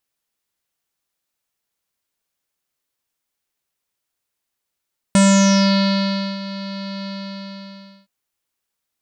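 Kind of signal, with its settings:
subtractive voice square G3 24 dB per octave, low-pass 4,400 Hz, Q 6.2, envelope 1 octave, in 0.58 s, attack 1.1 ms, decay 1.23 s, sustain −17.5 dB, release 1.01 s, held 1.91 s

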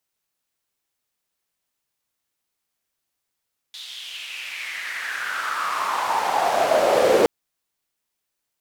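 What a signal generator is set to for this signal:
filter sweep on noise white, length 3.52 s bandpass, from 3,800 Hz, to 460 Hz, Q 4.9, exponential, gain ramp +31 dB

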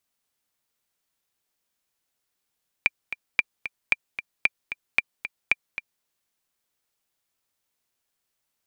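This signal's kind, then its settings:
click track 226 BPM, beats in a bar 2, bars 6, 2,370 Hz, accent 12 dB −5 dBFS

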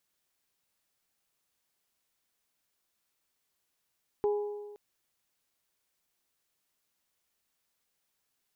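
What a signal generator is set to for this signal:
struck metal bell, length 0.52 s, lowest mode 414 Hz, modes 3, decay 1.39 s, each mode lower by 11 dB, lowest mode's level −23.5 dB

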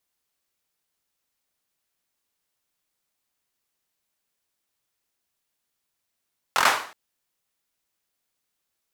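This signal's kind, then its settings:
synth clap length 0.37 s, bursts 5, apart 23 ms, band 1,100 Hz, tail 0.47 s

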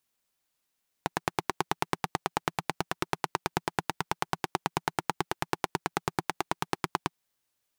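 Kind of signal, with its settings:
pulse-train model of a single-cylinder engine, steady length 6.08 s, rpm 1,100, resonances 170/360/810 Hz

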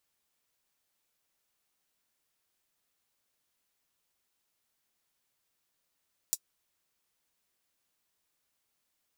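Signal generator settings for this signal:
closed synth hi-hat, high-pass 6,100 Hz, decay 0.06 s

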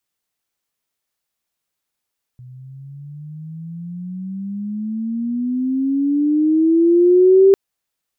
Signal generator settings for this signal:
pitch glide with a swell sine, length 5.15 s, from 124 Hz, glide +20 semitones, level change +29.5 dB, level −6 dB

